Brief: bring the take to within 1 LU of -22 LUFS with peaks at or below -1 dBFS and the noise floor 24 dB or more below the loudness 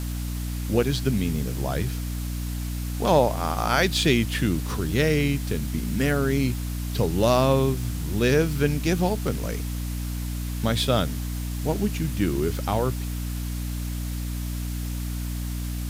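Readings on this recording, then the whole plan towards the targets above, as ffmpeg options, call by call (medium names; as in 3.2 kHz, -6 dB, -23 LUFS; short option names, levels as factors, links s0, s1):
hum 60 Hz; highest harmonic 300 Hz; hum level -27 dBFS; noise floor -30 dBFS; noise floor target -50 dBFS; loudness -25.5 LUFS; peak level -7.0 dBFS; loudness target -22.0 LUFS
-> -af "bandreject=f=60:t=h:w=4,bandreject=f=120:t=h:w=4,bandreject=f=180:t=h:w=4,bandreject=f=240:t=h:w=4,bandreject=f=300:t=h:w=4"
-af "afftdn=nr=20:nf=-30"
-af "volume=1.5"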